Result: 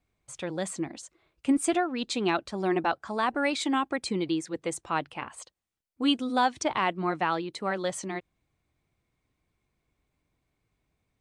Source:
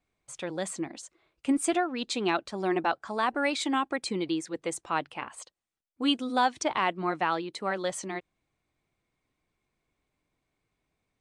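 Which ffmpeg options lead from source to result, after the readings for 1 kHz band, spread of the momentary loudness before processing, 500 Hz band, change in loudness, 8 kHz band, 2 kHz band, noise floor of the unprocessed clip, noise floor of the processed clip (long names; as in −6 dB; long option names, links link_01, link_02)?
0.0 dB, 13 LU, +1.0 dB, +1.0 dB, 0.0 dB, 0.0 dB, −82 dBFS, −80 dBFS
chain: -af "equalizer=frequency=68:width=0.48:gain=7.5"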